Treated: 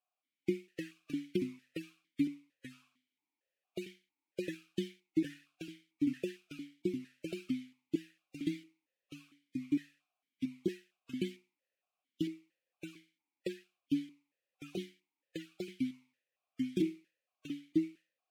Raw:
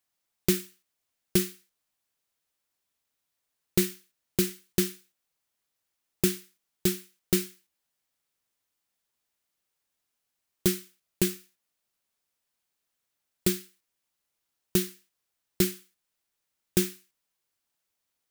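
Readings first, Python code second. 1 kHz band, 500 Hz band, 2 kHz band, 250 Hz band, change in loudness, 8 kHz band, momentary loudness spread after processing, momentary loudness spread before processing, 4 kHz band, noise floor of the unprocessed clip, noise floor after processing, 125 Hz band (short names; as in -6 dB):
under -15 dB, -8.0 dB, -9.0 dB, -3.0 dB, -10.5 dB, -25.5 dB, 17 LU, 9 LU, -13.5 dB, -82 dBFS, under -85 dBFS, -11.0 dB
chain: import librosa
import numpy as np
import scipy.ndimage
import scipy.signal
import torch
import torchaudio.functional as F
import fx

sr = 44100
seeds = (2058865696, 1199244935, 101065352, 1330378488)

y = fx.spec_gate(x, sr, threshold_db=-25, keep='strong')
y = fx.echo_pitch(y, sr, ms=244, semitones=-2, count=3, db_per_echo=-3.0)
y = fx.vowel_held(y, sr, hz=4.4)
y = y * librosa.db_to_amplitude(5.0)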